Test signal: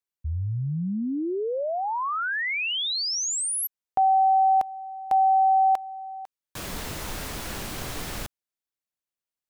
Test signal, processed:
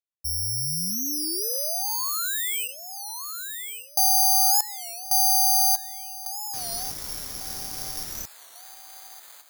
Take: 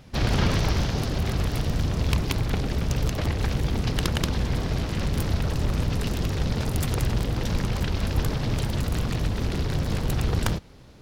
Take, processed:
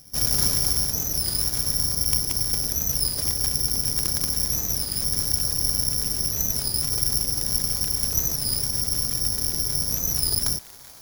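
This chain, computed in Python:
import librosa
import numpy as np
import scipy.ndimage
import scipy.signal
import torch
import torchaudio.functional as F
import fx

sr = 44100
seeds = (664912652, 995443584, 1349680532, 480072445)

y = fx.echo_wet_bandpass(x, sr, ms=1148, feedback_pct=43, hz=1400.0, wet_db=-7)
y = (np.kron(scipy.signal.resample_poly(y, 1, 8), np.eye(8)[0]) * 8)[:len(y)]
y = fx.record_warp(y, sr, rpm=33.33, depth_cents=160.0)
y = F.gain(torch.from_numpy(y), -9.0).numpy()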